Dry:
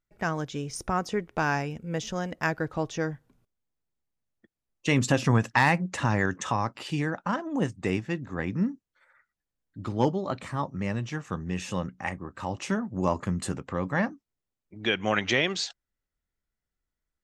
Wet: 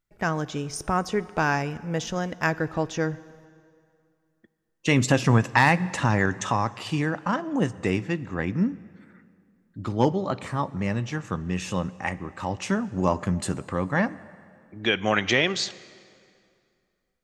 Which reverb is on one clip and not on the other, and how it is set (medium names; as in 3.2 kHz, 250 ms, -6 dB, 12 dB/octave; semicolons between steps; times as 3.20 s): plate-style reverb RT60 2.4 s, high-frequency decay 0.8×, DRR 17.5 dB; trim +3 dB